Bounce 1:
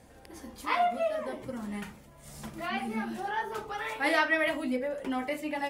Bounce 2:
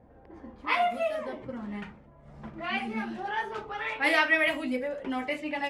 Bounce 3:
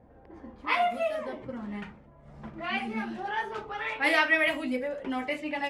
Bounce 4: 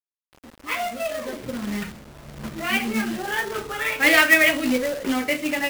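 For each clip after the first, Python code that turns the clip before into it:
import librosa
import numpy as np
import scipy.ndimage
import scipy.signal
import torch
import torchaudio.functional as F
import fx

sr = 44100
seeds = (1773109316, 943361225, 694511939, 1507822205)

y1 = fx.env_lowpass(x, sr, base_hz=970.0, full_db=-26.0)
y1 = fx.dynamic_eq(y1, sr, hz=2500.0, q=1.8, threshold_db=-46.0, ratio=4.0, max_db=7)
y2 = y1
y3 = fx.fade_in_head(y2, sr, length_s=1.82)
y3 = fx.peak_eq(y3, sr, hz=870.0, db=-9.0, octaves=0.62)
y3 = fx.quant_companded(y3, sr, bits=4)
y3 = y3 * 10.0 ** (9.0 / 20.0)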